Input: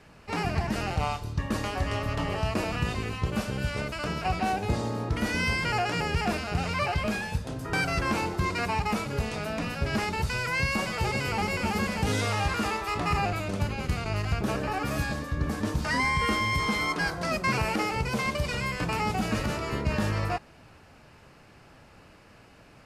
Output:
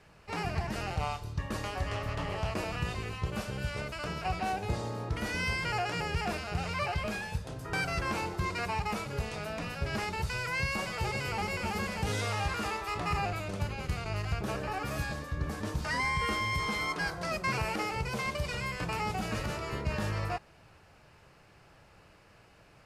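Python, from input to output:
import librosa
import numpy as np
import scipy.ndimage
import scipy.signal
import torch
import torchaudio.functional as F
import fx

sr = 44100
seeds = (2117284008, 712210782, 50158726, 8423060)

y = fx.peak_eq(x, sr, hz=250.0, db=-7.5, octaves=0.48)
y = fx.doppler_dist(y, sr, depth_ms=0.31, at=(1.89, 2.56))
y = y * 10.0 ** (-4.5 / 20.0)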